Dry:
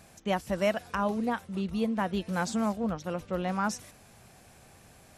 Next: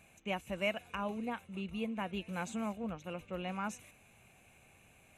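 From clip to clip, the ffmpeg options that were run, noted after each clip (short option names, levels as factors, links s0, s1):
-af "superequalizer=12b=3.16:14b=0.282,volume=0.355"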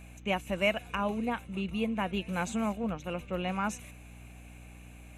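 -af "aeval=exprs='val(0)+0.00178*(sin(2*PI*60*n/s)+sin(2*PI*2*60*n/s)/2+sin(2*PI*3*60*n/s)/3+sin(2*PI*4*60*n/s)/4+sin(2*PI*5*60*n/s)/5)':c=same,volume=2.11"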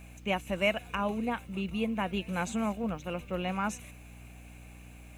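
-af "acrusher=bits=10:mix=0:aa=0.000001"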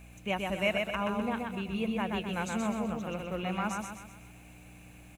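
-af "aecho=1:1:127|254|381|508|635|762:0.668|0.294|0.129|0.0569|0.0251|0.011,volume=0.794"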